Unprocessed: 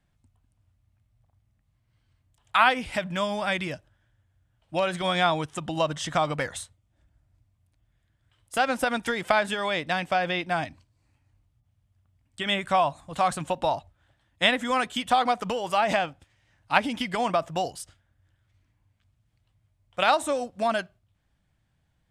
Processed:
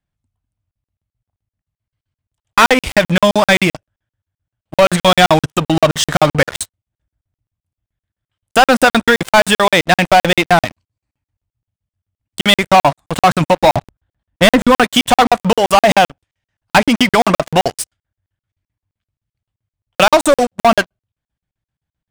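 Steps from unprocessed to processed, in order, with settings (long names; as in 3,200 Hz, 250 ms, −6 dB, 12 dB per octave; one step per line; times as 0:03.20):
0:13.74–0:14.84: spectral tilt −2.5 dB per octave
leveller curve on the samples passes 5
regular buffer underruns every 0.13 s, samples 2,048, zero, from 0:00.71
level +1 dB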